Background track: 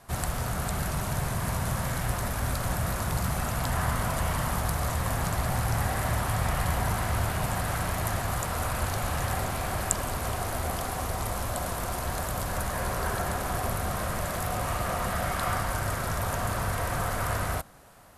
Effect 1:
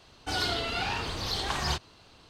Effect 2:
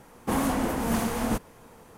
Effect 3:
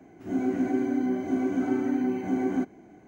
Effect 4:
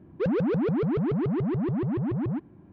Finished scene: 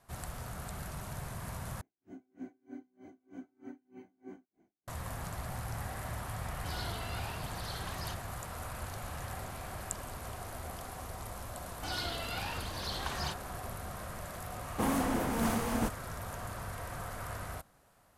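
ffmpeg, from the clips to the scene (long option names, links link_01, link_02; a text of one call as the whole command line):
ffmpeg -i bed.wav -i cue0.wav -i cue1.wav -i cue2.wav -filter_complex "[1:a]asplit=2[link_01][link_02];[0:a]volume=-12dB[link_03];[3:a]aeval=exprs='val(0)*pow(10,-37*(0.5-0.5*cos(2*PI*3.2*n/s))/20)':channel_layout=same[link_04];[link_02]bandreject=frequency=410:width=6.5[link_05];[link_03]asplit=2[link_06][link_07];[link_06]atrim=end=1.814[link_08];[link_04]atrim=end=3.07,asetpts=PTS-STARTPTS,volume=-16.5dB[link_09];[link_07]atrim=start=4.876[link_10];[link_01]atrim=end=2.29,asetpts=PTS-STARTPTS,volume=-13.5dB,afade=type=in:duration=0.004:curve=hsin,afade=type=out:start_time=2.286:duration=0.004:curve=hsin,adelay=6370[link_11];[link_05]atrim=end=2.29,asetpts=PTS-STARTPTS,volume=-8dB,afade=type=in:duration=0.004:curve=hsin,afade=type=out:start_time=2.286:duration=0.004:curve=hsin,adelay=11560[link_12];[2:a]atrim=end=1.97,asetpts=PTS-STARTPTS,volume=-5dB,afade=type=in:duration=0.004:curve=hsin,afade=type=out:start_time=1.966:duration=0.004:curve=hsin,adelay=14510[link_13];[link_08][link_09]acrossfade=duration=0.004:curve1=hsin:curve2=hsin[link_14];[link_14][link_10]acrossfade=duration=0.004:curve1=hsin:curve2=hsin[link_15];[link_15][link_11][link_12][link_13]amix=inputs=4:normalize=0" out.wav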